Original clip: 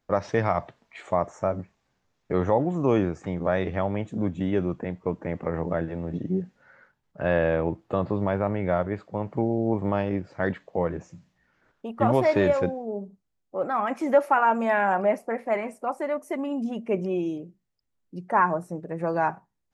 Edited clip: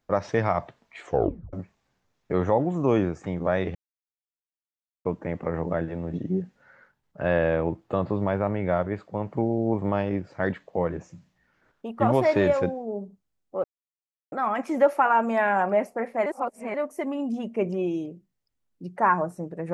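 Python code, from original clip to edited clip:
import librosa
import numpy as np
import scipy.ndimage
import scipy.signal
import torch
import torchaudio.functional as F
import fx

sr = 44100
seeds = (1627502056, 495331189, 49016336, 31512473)

y = fx.edit(x, sr, fx.tape_stop(start_s=1.04, length_s=0.49),
    fx.silence(start_s=3.75, length_s=1.3),
    fx.insert_silence(at_s=13.64, length_s=0.68),
    fx.reverse_span(start_s=15.58, length_s=0.48), tone=tone)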